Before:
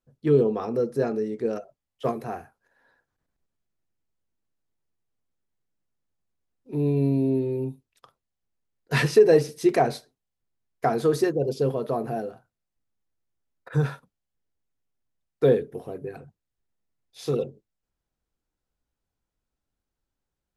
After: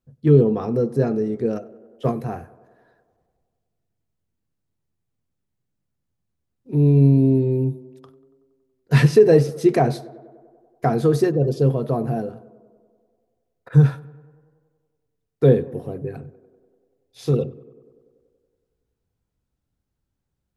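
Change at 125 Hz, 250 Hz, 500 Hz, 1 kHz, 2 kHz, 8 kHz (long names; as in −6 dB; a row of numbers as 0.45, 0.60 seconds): +11.0 dB, +6.5 dB, +3.0 dB, +1.5 dB, +0.5 dB, can't be measured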